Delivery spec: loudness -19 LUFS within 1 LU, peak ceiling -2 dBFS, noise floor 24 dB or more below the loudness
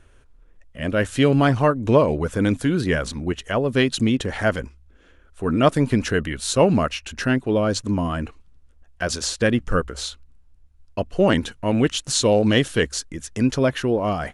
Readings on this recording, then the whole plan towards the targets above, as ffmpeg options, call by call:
loudness -21.5 LUFS; peak level -3.5 dBFS; loudness target -19.0 LUFS
-> -af "volume=1.33,alimiter=limit=0.794:level=0:latency=1"

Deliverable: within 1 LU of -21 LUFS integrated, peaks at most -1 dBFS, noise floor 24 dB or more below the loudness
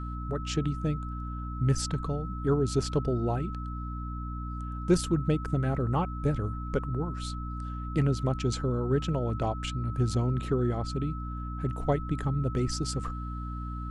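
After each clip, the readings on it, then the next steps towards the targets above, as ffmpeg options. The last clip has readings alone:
hum 60 Hz; highest harmonic 300 Hz; hum level -34 dBFS; steady tone 1.3 kHz; tone level -41 dBFS; loudness -30.5 LUFS; peak level -12.0 dBFS; loudness target -21.0 LUFS
-> -af "bandreject=f=60:t=h:w=6,bandreject=f=120:t=h:w=6,bandreject=f=180:t=h:w=6,bandreject=f=240:t=h:w=6,bandreject=f=300:t=h:w=6"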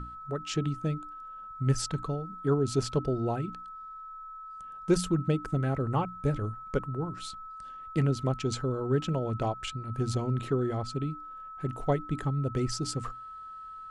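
hum not found; steady tone 1.3 kHz; tone level -41 dBFS
-> -af "bandreject=f=1300:w=30"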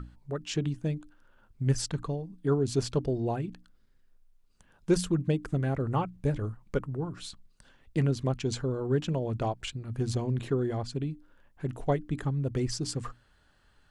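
steady tone not found; loudness -31.5 LUFS; peak level -13.5 dBFS; loudness target -21.0 LUFS
-> -af "volume=3.35"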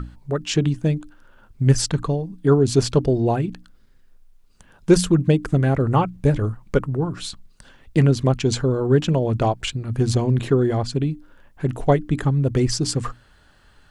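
loudness -21.0 LUFS; peak level -3.0 dBFS; noise floor -54 dBFS

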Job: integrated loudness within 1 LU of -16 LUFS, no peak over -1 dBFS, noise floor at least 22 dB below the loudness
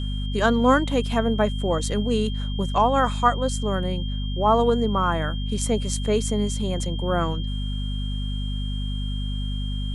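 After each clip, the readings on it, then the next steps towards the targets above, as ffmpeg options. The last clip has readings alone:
hum 50 Hz; highest harmonic 250 Hz; hum level -25 dBFS; steady tone 3.2 kHz; tone level -37 dBFS; loudness -24.0 LUFS; peak level -5.5 dBFS; loudness target -16.0 LUFS
-> -af "bandreject=f=50:t=h:w=6,bandreject=f=100:t=h:w=6,bandreject=f=150:t=h:w=6,bandreject=f=200:t=h:w=6,bandreject=f=250:t=h:w=6"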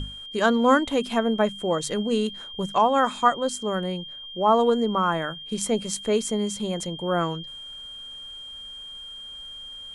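hum not found; steady tone 3.2 kHz; tone level -37 dBFS
-> -af "bandreject=f=3200:w=30"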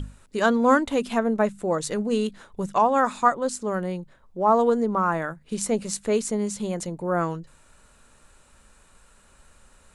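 steady tone not found; loudness -24.0 LUFS; peak level -5.5 dBFS; loudness target -16.0 LUFS
-> -af "volume=2.51,alimiter=limit=0.891:level=0:latency=1"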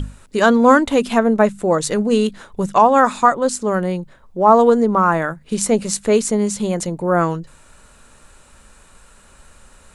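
loudness -16.5 LUFS; peak level -1.0 dBFS; noise floor -49 dBFS

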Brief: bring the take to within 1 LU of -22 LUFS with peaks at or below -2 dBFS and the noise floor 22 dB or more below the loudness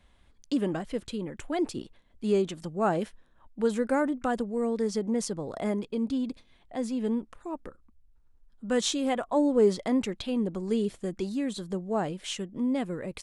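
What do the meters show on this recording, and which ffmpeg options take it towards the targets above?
loudness -29.5 LUFS; peak level -13.0 dBFS; loudness target -22.0 LUFS
-> -af "volume=2.37"

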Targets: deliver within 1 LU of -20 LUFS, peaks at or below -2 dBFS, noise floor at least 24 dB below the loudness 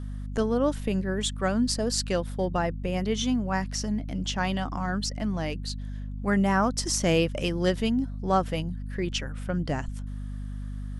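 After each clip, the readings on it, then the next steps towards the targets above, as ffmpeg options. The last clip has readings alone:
hum 50 Hz; highest harmonic 250 Hz; hum level -32 dBFS; loudness -28.0 LUFS; peak level -9.5 dBFS; loudness target -20.0 LUFS
-> -af "bandreject=f=50:t=h:w=6,bandreject=f=100:t=h:w=6,bandreject=f=150:t=h:w=6,bandreject=f=200:t=h:w=6,bandreject=f=250:t=h:w=6"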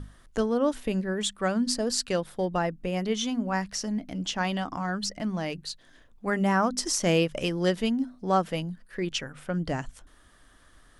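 hum not found; loudness -28.5 LUFS; peak level -9.5 dBFS; loudness target -20.0 LUFS
-> -af "volume=2.66,alimiter=limit=0.794:level=0:latency=1"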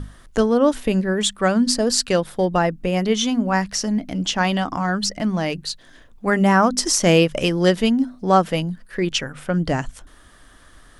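loudness -20.0 LUFS; peak level -2.0 dBFS; noise floor -48 dBFS

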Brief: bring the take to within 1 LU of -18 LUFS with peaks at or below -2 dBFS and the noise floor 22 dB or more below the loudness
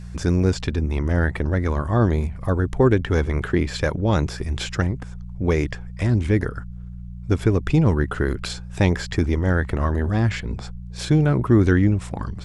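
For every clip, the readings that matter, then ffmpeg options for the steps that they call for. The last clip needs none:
hum 60 Hz; highest harmonic 180 Hz; hum level -32 dBFS; loudness -22.0 LUFS; peak level -4.5 dBFS; loudness target -18.0 LUFS
-> -af "bandreject=f=60:t=h:w=4,bandreject=f=120:t=h:w=4,bandreject=f=180:t=h:w=4"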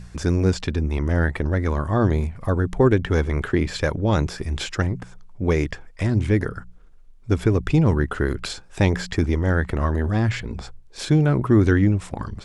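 hum not found; loudness -22.0 LUFS; peak level -5.0 dBFS; loudness target -18.0 LUFS
-> -af "volume=1.58,alimiter=limit=0.794:level=0:latency=1"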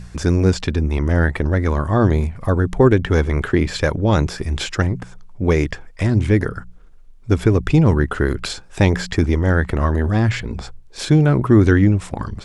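loudness -18.0 LUFS; peak level -2.0 dBFS; noise floor -42 dBFS

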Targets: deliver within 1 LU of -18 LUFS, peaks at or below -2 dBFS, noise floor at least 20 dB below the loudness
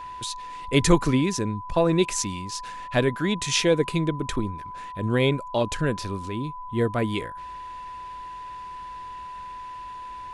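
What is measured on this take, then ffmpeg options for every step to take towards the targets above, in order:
steady tone 1 kHz; tone level -35 dBFS; loudness -25.0 LUFS; peak level -4.0 dBFS; loudness target -18.0 LUFS
-> -af "bandreject=f=1000:w=30"
-af "volume=2.24,alimiter=limit=0.794:level=0:latency=1"

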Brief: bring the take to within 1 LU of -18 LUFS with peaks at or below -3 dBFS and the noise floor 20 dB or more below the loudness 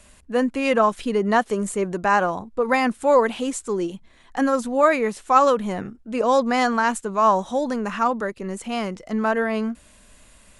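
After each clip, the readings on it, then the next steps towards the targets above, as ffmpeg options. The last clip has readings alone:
loudness -22.0 LUFS; peak level -4.0 dBFS; loudness target -18.0 LUFS
-> -af "volume=1.58,alimiter=limit=0.708:level=0:latency=1"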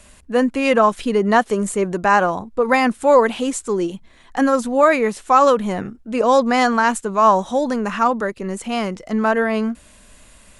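loudness -18.0 LUFS; peak level -3.0 dBFS; noise floor -49 dBFS

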